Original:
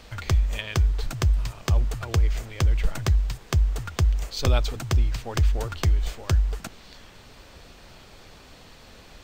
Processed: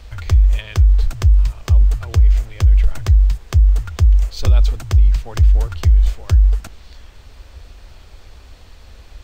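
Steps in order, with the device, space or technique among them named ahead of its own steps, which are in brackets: car stereo with a boomy subwoofer (resonant low shelf 100 Hz +11.5 dB, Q 1.5; peak limiter -5 dBFS, peak gain reduction 6 dB)

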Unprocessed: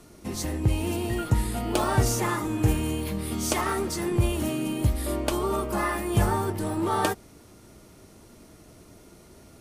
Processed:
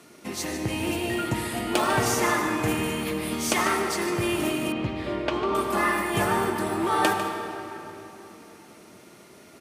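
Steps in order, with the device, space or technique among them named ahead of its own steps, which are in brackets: PA in a hall (high-pass 180 Hz 12 dB/octave; peaking EQ 2.2 kHz +6.5 dB 1.6 oct; delay 149 ms -12 dB; reverberation RT60 3.5 s, pre-delay 74 ms, DRR 5 dB); 4.72–5.55 s: distance through air 190 m

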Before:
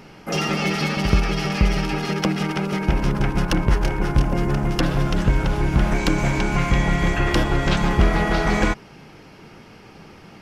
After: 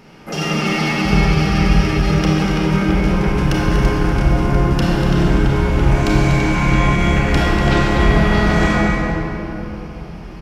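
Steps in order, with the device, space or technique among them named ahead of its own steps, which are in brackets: cave (delay 242 ms -9 dB; reverberation RT60 3.7 s, pre-delay 26 ms, DRR -5 dB); trim -2 dB

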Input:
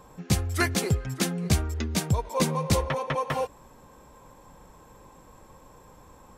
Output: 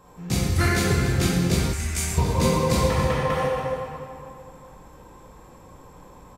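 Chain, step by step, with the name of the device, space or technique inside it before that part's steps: cave (delay 282 ms -12.5 dB; reverberation RT60 2.5 s, pre-delay 15 ms, DRR -7 dB); 1.73–2.18 s: graphic EQ 125/250/500/1000/2000/4000/8000 Hz -12/-9/-8/-5/+4/-8/+9 dB; trim -3.5 dB

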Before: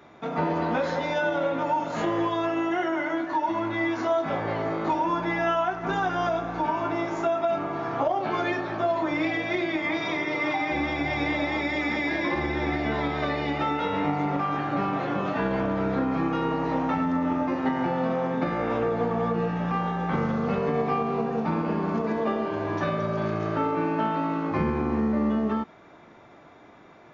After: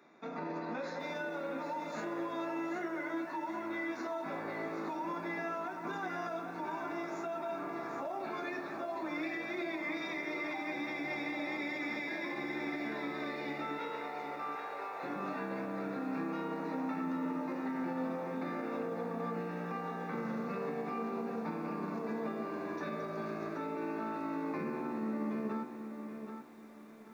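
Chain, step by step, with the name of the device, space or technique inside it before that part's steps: PA system with an anti-feedback notch (high-pass 190 Hz 24 dB/octave; Butterworth band-stop 3.1 kHz, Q 4.3; peak limiter -20 dBFS, peak gain reduction 6 dB); 13.78–15.03 s: elliptic high-pass 420 Hz; peaking EQ 730 Hz -4 dB 1.5 oct; bit-crushed delay 777 ms, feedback 35%, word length 9-bit, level -7.5 dB; trim -8.5 dB

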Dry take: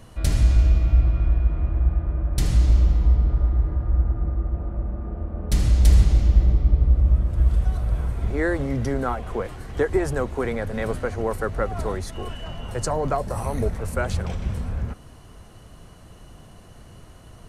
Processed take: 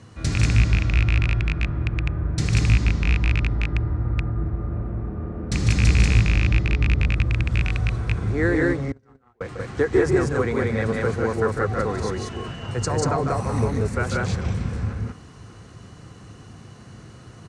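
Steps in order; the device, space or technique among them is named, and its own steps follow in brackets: 8.73–9.41 s: gate -18 dBFS, range -43 dB; loudspeakers at several distances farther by 51 m -6 dB, 64 m -1 dB; car door speaker with a rattle (rattle on loud lows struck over -11 dBFS, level -13 dBFS; cabinet simulation 96–7800 Hz, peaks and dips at 110 Hz +5 dB, 620 Hz -9 dB, 900 Hz -4 dB, 3.1 kHz -5 dB); trim +2 dB

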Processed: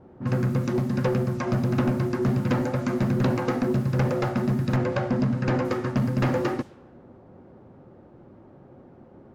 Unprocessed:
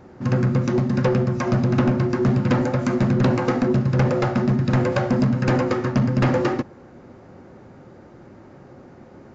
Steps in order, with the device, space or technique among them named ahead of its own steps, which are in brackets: cassette deck with a dynamic noise filter (white noise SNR 30 dB; level-controlled noise filter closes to 860 Hz, open at -16.5 dBFS); 4.76–5.65 s: distance through air 65 m; trim -4.5 dB

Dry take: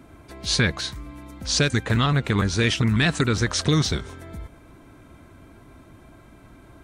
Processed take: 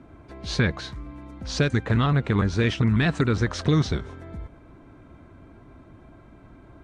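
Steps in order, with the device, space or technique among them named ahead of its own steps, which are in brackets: through cloth (low-pass 7.4 kHz 12 dB/octave; treble shelf 2.6 kHz -11.5 dB)

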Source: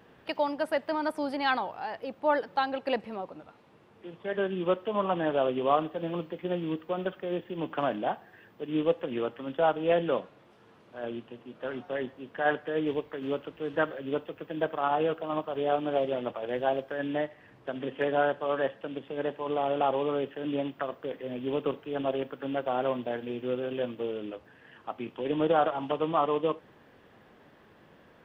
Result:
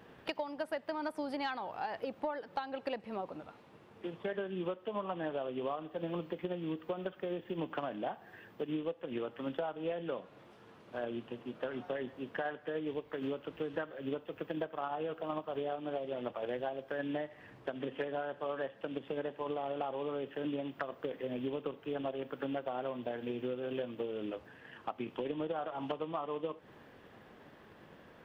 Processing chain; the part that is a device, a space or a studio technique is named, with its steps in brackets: drum-bus smash (transient shaper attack +5 dB, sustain +1 dB; compression 12:1, threshold -33 dBFS, peak gain reduction 17.5 dB; saturation -22 dBFS, distortion -28 dB)

